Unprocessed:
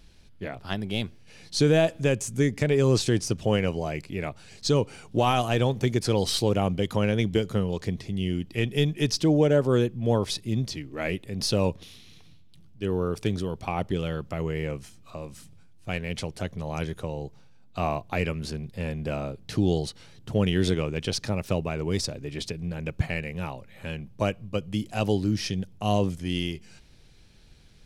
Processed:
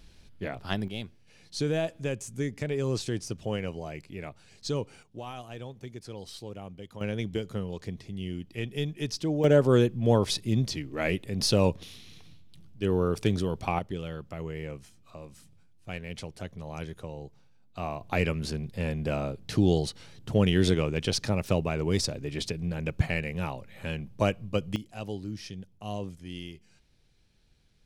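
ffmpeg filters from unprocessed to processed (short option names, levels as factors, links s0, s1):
-af "asetnsamples=n=441:p=0,asendcmd='0.88 volume volume -8dB;5.03 volume volume -17.5dB;7.01 volume volume -7.5dB;9.44 volume volume 1dB;13.79 volume volume -7dB;18.01 volume volume 0.5dB;24.76 volume volume -11.5dB',volume=1"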